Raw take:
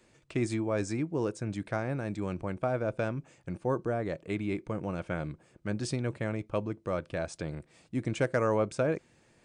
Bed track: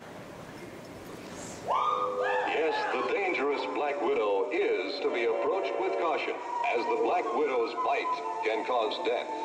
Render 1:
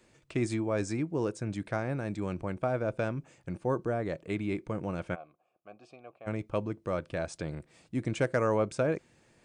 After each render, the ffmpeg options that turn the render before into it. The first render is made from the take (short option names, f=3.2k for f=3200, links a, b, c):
-filter_complex "[0:a]asplit=3[a][b][c];[a]afade=t=out:st=5.14:d=0.02[d];[b]asplit=3[e][f][g];[e]bandpass=f=730:t=q:w=8,volume=0dB[h];[f]bandpass=f=1.09k:t=q:w=8,volume=-6dB[i];[g]bandpass=f=2.44k:t=q:w=8,volume=-9dB[j];[h][i][j]amix=inputs=3:normalize=0,afade=t=in:st=5.14:d=0.02,afade=t=out:st=6.26:d=0.02[k];[c]afade=t=in:st=6.26:d=0.02[l];[d][k][l]amix=inputs=3:normalize=0"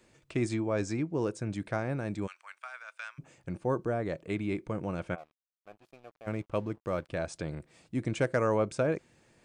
-filter_complex "[0:a]asettb=1/sr,asplit=3[a][b][c];[a]atrim=end=0.494[d];[b]atrim=start=0.49:end=1.21,asetpts=PTS-STARTPTS,afade=t=in:d=0.004:c=qsin,afade=t=out:st=0.716:d=0.004:c=qsin,lowpass=f=8.1k:w=0.5412,lowpass=f=8.1k:w=1.3066[e];[c]atrim=start=1.206[f];[d][e]acrossfade=d=0.004:c1=hsin:c2=qsin[g];[g][f]acrossfade=d=0.004:c1=qsin:c2=hsin,asplit=3[h][i][j];[h]afade=t=out:st=2.26:d=0.02[k];[i]highpass=f=1.3k:w=0.5412,highpass=f=1.3k:w=1.3066,afade=t=in:st=2.26:d=0.02,afade=t=out:st=3.18:d=0.02[l];[j]afade=t=in:st=3.18:d=0.02[m];[k][l][m]amix=inputs=3:normalize=0,asettb=1/sr,asplit=3[n][o][p];[n]atrim=end=5.184[q];[o]atrim=start=5.18:end=7.09,asetpts=PTS-STARTPTS,afade=t=in:d=0.004:c=qsin,afade=t=out:st=1.906:d=0.004:c=qsin,aeval=exprs='sgn(val(0))*max(abs(val(0))-0.00133,0)':c=same[r];[p]atrim=start=7.086[s];[q][r]acrossfade=d=0.004:c1=hsin:c2=qsin[t];[t][s]acrossfade=d=0.004:c1=qsin:c2=hsin"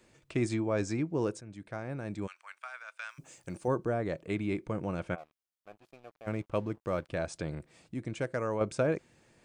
-filter_complex "[0:a]asettb=1/sr,asplit=3[a][b][c];[a]atrim=end=3.094[d];[b]atrim=start=3.09:end=3.68,asetpts=PTS-STARTPTS,afade=t=in:d=0.004:c=qsin,afade=t=out:st=0.586:d=0.004:c=qsin,bass=f=250:g=-5,treble=f=4k:g=13[e];[c]atrim=start=3.676[f];[d][e]acrossfade=d=0.004:c1=hsin:c2=qsin[g];[g][f]acrossfade=d=0.004:c1=qsin:c2=hsin,asplit=4[h][i][j][k];[h]atrim=end=1.41,asetpts=PTS-STARTPTS,afade=t=out:st=1.406:d=0.004:c=hsin:silence=0.177828[l];[i]atrim=start=1.41:end=7.942,asetpts=PTS-STARTPTS,afade=t=in:d=1.11:silence=0.177828[m];[j]atrim=start=7.938:end=8.612,asetpts=PTS-STARTPTS,volume=-5.5dB[n];[k]atrim=start=8.608[o];[l][m]concat=n=2:v=0:a=1[p];[p][n]acrossfade=d=0.004:c1=hsin:c2=hsin[q];[q][o]acrossfade=d=0.004:c1=hsin:c2=hsin"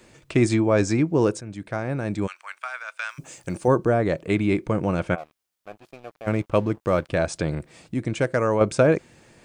-af "volume=11dB"